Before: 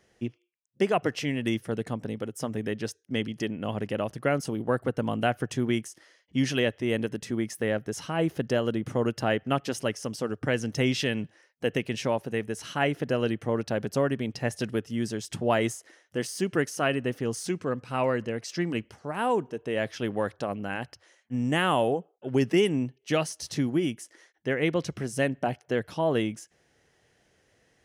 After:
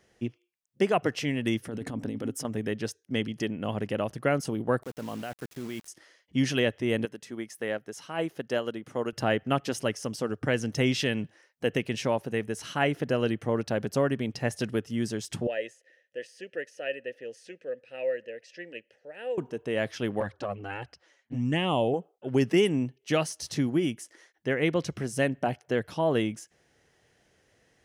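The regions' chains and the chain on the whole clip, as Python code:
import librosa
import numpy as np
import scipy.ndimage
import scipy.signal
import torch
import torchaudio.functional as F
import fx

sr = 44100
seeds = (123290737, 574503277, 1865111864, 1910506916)

y = fx.chain(x, sr, fx.peak_eq(hz=270.0, db=13.5, octaves=0.21),
    fx.over_compress(threshold_db=-33.0, ratio=-1.0), at=(1.63, 2.45))
y = fx.chain(y, sr, fx.low_shelf(hz=98.0, db=-12.0),
    fx.level_steps(step_db=18),
    fx.quant_dither(seeds[0], bits=8, dither='none'), at=(4.83, 5.88))
y = fx.chain(y, sr, fx.highpass(hz=370.0, slope=6),
    fx.upward_expand(threshold_db=-37.0, expansion=1.5), at=(7.05, 9.13))
y = fx.chain(y, sr, fx.vowel_filter(vowel='e'),
    fx.high_shelf(hz=2500.0, db=9.5), at=(15.47, 19.38))
y = fx.chain(y, sr, fx.lowpass(hz=6600.0, slope=12),
    fx.low_shelf(hz=75.0, db=7.5),
    fx.env_flanger(rest_ms=8.4, full_db=-19.5), at=(20.2, 21.94))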